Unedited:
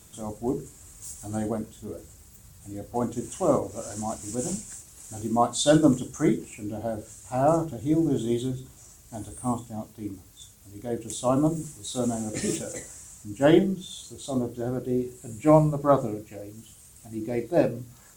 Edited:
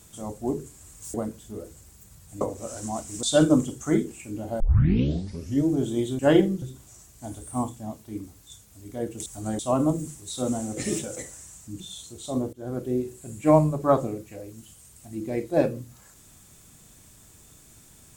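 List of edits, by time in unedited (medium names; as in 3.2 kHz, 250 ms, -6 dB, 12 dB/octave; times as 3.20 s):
1.14–1.47 s: move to 11.16 s
2.74–3.55 s: delete
4.37–5.56 s: delete
6.93 s: tape start 1.08 s
13.37–13.80 s: move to 8.52 s
14.53–14.78 s: fade in, from -20 dB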